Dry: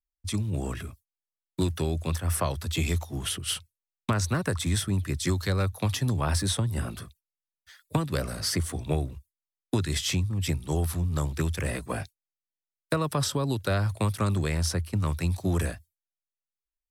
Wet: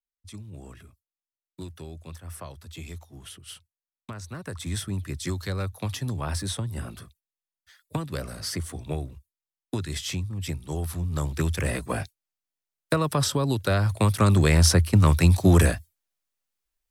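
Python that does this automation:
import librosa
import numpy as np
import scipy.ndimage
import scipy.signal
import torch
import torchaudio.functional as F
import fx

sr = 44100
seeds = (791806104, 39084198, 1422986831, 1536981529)

y = fx.gain(x, sr, db=fx.line((4.25, -12.5), (4.76, -3.5), (10.77, -3.5), (11.54, 3.0), (13.81, 3.0), (14.58, 9.5)))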